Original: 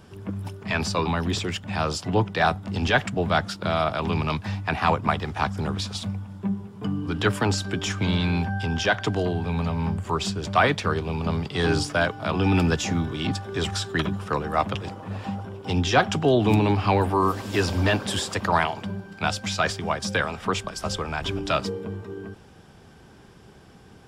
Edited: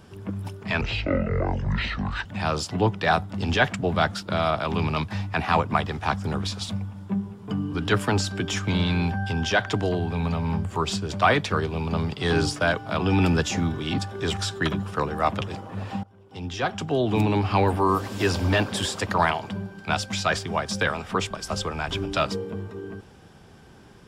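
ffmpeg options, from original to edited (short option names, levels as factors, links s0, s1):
-filter_complex "[0:a]asplit=4[s0][s1][s2][s3];[s0]atrim=end=0.814[s4];[s1]atrim=start=0.81:end=1.59,asetpts=PTS-STARTPTS,asetrate=23814,aresample=44100[s5];[s2]atrim=start=1.586:end=15.37,asetpts=PTS-STARTPTS,afade=t=out:st=13.78:d=0.004:c=hsin:silence=0.0749894[s6];[s3]atrim=start=15.37,asetpts=PTS-STARTPTS,afade=t=in:d=1.58:silence=0.0749894[s7];[s4][s5]acrossfade=d=0.004:c1=hsin:c2=hsin[s8];[s6][s7]concat=n=2:v=0:a=1[s9];[s8][s9]acrossfade=d=0.004:c1=hsin:c2=hsin"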